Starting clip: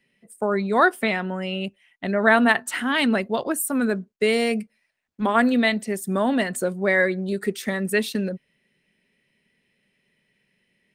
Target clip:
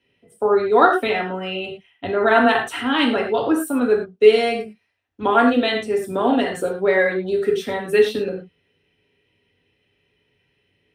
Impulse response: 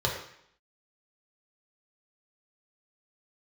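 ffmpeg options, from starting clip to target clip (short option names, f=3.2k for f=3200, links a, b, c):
-filter_complex "[1:a]atrim=start_sample=2205,atrim=end_sample=4410,asetrate=35721,aresample=44100[a];[0:a][a]afir=irnorm=-1:irlink=0,volume=-8dB"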